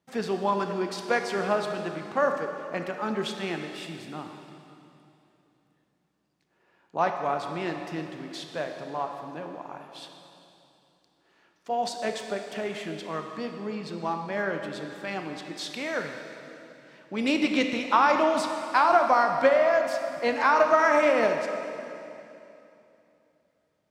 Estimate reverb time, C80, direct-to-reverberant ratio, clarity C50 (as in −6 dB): 2.8 s, 6.0 dB, 4.0 dB, 5.0 dB